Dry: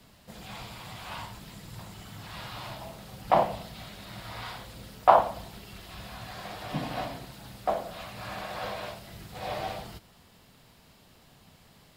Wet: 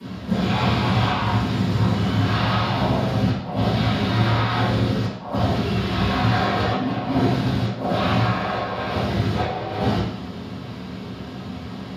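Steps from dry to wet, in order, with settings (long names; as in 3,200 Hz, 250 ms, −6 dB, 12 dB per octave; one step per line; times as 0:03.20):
high-pass filter 94 Hz 24 dB per octave
compressor whose output falls as the input rises −42 dBFS, ratio −1
convolution reverb RT60 0.70 s, pre-delay 3 ms, DRR −17.5 dB
level −5 dB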